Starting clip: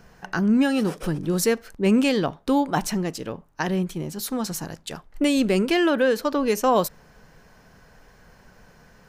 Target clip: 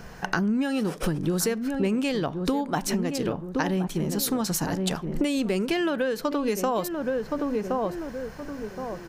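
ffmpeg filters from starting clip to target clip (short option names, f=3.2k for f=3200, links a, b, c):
-filter_complex "[0:a]asplit=2[a][b];[b]adelay=1070,lowpass=f=1k:p=1,volume=-10.5dB,asplit=2[c][d];[d]adelay=1070,lowpass=f=1k:p=1,volume=0.31,asplit=2[e][f];[f]adelay=1070,lowpass=f=1k:p=1,volume=0.31[g];[c][e][g]amix=inputs=3:normalize=0[h];[a][h]amix=inputs=2:normalize=0,acompressor=threshold=-31dB:ratio=10,volume=8.5dB"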